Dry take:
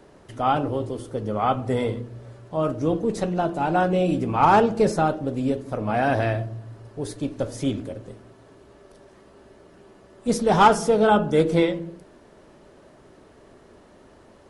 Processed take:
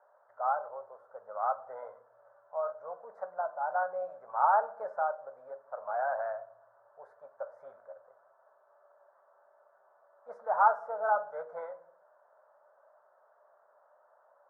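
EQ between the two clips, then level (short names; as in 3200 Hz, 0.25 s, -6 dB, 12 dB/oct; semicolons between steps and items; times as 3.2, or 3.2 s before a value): elliptic band-pass 580–1500 Hz, stop band 40 dB; -7.5 dB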